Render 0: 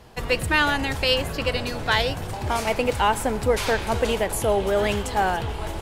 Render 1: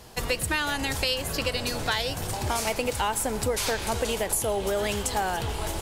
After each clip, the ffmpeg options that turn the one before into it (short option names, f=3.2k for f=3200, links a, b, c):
-af "bass=f=250:g=-1,treble=f=4k:g=10,acompressor=threshold=-24dB:ratio=4"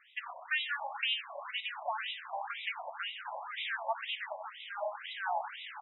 -af "aecho=1:1:95|190|285|380|475|570|665:0.316|0.183|0.106|0.0617|0.0358|0.0208|0.012,afftfilt=real='re*between(b*sr/1024,770*pow(2800/770,0.5+0.5*sin(2*PI*2*pts/sr))/1.41,770*pow(2800/770,0.5+0.5*sin(2*PI*2*pts/sr))*1.41)':imag='im*between(b*sr/1024,770*pow(2800/770,0.5+0.5*sin(2*PI*2*pts/sr))/1.41,770*pow(2800/770,0.5+0.5*sin(2*PI*2*pts/sr))*1.41)':win_size=1024:overlap=0.75,volume=-2.5dB"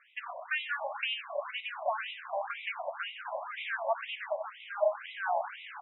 -af "highpass=460,equalizer=f=590:t=q:w=4:g=8,equalizer=f=860:t=q:w=4:g=-7,equalizer=f=1.3k:t=q:w=4:g=-3,equalizer=f=1.9k:t=q:w=4:g=-7,lowpass=f=2.4k:w=0.5412,lowpass=f=2.4k:w=1.3066,volume=6dB"